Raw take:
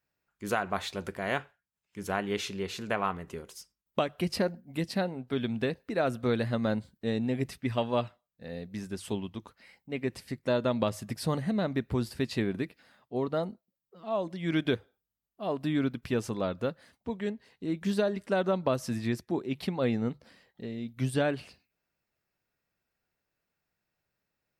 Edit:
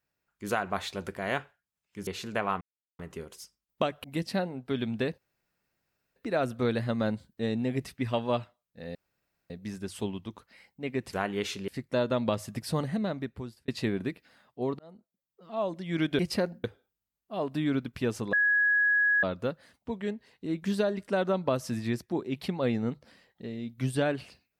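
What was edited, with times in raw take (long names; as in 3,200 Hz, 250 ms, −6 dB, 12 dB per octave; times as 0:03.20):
0:02.07–0:02.62: move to 0:10.22
0:03.16: splice in silence 0.38 s
0:04.21–0:04.66: move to 0:14.73
0:05.80: splice in room tone 0.98 s
0:08.59: splice in room tone 0.55 s
0:11.45–0:12.22: fade out
0:13.33–0:14.06: fade in
0:16.42: insert tone 1,670 Hz −21 dBFS 0.90 s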